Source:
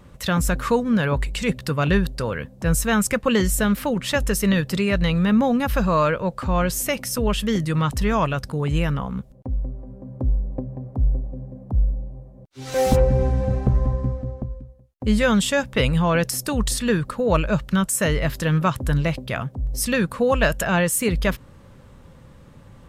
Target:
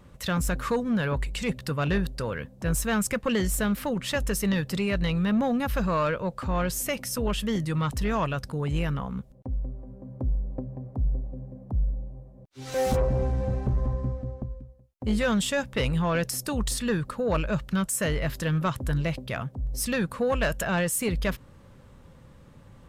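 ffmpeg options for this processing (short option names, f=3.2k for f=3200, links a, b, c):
-af "asoftclip=type=tanh:threshold=-13dB,volume=-4.5dB"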